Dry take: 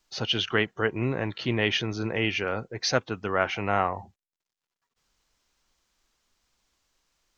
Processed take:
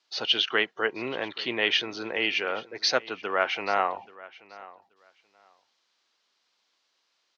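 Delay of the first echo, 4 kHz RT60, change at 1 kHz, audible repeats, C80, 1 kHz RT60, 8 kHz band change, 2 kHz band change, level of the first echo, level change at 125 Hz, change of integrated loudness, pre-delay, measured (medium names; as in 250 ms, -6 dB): 831 ms, no reverb, +0.5 dB, 1, no reverb, no reverb, no reading, +1.5 dB, -20.0 dB, -19.5 dB, +0.5 dB, no reverb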